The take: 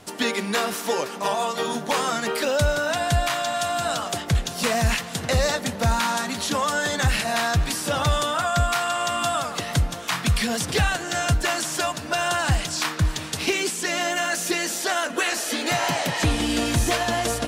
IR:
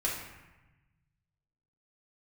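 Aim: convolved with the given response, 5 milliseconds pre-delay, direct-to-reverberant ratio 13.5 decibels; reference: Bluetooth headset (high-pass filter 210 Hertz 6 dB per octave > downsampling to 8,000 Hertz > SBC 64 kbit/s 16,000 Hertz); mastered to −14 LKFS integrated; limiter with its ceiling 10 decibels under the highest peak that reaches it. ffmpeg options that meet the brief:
-filter_complex "[0:a]alimiter=limit=-20.5dB:level=0:latency=1,asplit=2[link_01][link_02];[1:a]atrim=start_sample=2205,adelay=5[link_03];[link_02][link_03]afir=irnorm=-1:irlink=0,volume=-20dB[link_04];[link_01][link_04]amix=inputs=2:normalize=0,highpass=frequency=210:poles=1,aresample=8000,aresample=44100,volume=17dB" -ar 16000 -c:a sbc -b:a 64k

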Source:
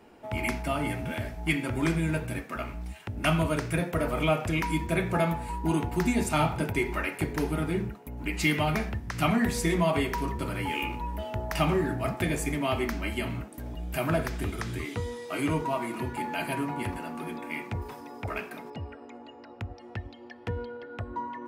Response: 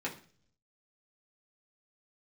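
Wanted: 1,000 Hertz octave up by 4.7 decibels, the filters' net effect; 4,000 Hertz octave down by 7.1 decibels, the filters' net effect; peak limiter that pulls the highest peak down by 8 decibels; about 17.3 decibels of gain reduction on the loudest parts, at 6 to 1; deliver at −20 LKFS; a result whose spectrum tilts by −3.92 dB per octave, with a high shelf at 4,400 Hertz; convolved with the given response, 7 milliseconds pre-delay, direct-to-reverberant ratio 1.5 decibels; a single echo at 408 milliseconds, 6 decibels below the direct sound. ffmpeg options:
-filter_complex "[0:a]equalizer=frequency=1000:width_type=o:gain=6.5,equalizer=frequency=4000:width_type=o:gain=-8,highshelf=frequency=4400:gain=-6.5,acompressor=threshold=-38dB:ratio=6,alimiter=level_in=9dB:limit=-24dB:level=0:latency=1,volume=-9dB,aecho=1:1:408:0.501,asplit=2[link_01][link_02];[1:a]atrim=start_sample=2205,adelay=7[link_03];[link_02][link_03]afir=irnorm=-1:irlink=0,volume=-5.5dB[link_04];[link_01][link_04]amix=inputs=2:normalize=0,volume=19.5dB"

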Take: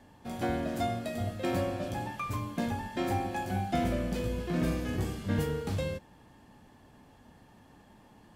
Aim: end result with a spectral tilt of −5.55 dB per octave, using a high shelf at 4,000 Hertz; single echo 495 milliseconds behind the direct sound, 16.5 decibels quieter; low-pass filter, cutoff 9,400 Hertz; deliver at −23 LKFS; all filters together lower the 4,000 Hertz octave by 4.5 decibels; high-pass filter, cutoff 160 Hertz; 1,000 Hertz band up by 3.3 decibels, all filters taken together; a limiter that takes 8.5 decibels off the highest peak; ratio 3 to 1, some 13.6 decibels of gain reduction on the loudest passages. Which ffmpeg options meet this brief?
ffmpeg -i in.wav -af "highpass=160,lowpass=9400,equalizer=frequency=1000:width_type=o:gain=5,highshelf=frequency=4000:gain=4.5,equalizer=frequency=4000:width_type=o:gain=-9,acompressor=threshold=-45dB:ratio=3,alimiter=level_in=14.5dB:limit=-24dB:level=0:latency=1,volume=-14.5dB,aecho=1:1:495:0.15,volume=25.5dB" out.wav

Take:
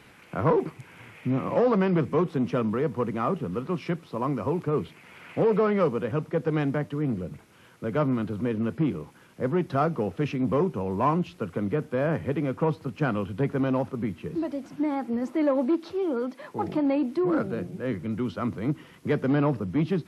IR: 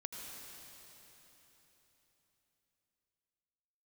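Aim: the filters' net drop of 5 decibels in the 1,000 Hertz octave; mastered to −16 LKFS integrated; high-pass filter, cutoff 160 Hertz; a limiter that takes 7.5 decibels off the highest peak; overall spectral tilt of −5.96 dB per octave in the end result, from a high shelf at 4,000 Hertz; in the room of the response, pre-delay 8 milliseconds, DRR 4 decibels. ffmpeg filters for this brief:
-filter_complex "[0:a]highpass=160,equalizer=frequency=1000:width_type=o:gain=-7,highshelf=frequency=4000:gain=8,alimiter=limit=-19.5dB:level=0:latency=1,asplit=2[link_01][link_02];[1:a]atrim=start_sample=2205,adelay=8[link_03];[link_02][link_03]afir=irnorm=-1:irlink=0,volume=-2.5dB[link_04];[link_01][link_04]amix=inputs=2:normalize=0,volume=12.5dB"

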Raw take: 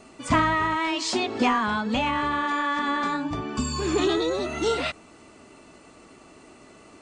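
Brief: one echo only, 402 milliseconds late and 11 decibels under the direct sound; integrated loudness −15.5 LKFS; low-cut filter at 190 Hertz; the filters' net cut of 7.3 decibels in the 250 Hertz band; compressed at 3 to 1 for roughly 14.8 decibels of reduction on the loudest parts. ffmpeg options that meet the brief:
ffmpeg -i in.wav -af "highpass=190,equalizer=frequency=250:width_type=o:gain=-8.5,acompressor=threshold=-40dB:ratio=3,aecho=1:1:402:0.282,volume=22.5dB" out.wav

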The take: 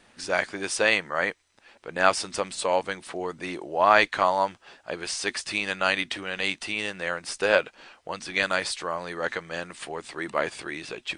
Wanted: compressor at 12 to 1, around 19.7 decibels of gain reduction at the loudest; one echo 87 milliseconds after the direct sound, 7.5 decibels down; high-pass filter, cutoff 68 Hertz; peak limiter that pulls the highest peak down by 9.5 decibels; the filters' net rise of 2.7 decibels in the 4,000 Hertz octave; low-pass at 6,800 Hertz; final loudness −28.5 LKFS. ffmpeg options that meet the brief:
ffmpeg -i in.wav -af "highpass=68,lowpass=6800,equalizer=frequency=4000:width_type=o:gain=4,acompressor=threshold=-32dB:ratio=12,alimiter=level_in=2dB:limit=-24dB:level=0:latency=1,volume=-2dB,aecho=1:1:87:0.422,volume=10dB" out.wav

